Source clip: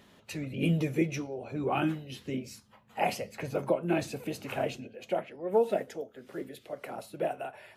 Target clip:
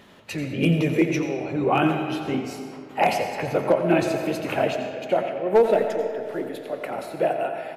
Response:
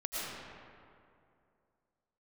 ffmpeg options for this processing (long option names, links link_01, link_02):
-filter_complex "[0:a]bass=frequency=250:gain=-2,treble=frequency=4000:gain=-5,volume=19dB,asoftclip=hard,volume=-19dB,asplit=2[link_01][link_02];[link_02]adelay=87.46,volume=-11dB,highshelf=frequency=4000:gain=-1.97[link_03];[link_01][link_03]amix=inputs=2:normalize=0,asplit=2[link_04][link_05];[1:a]atrim=start_sample=2205,lowshelf=frequency=200:gain=-8.5[link_06];[link_05][link_06]afir=irnorm=-1:irlink=0,volume=-8dB[link_07];[link_04][link_07]amix=inputs=2:normalize=0,volume=7dB"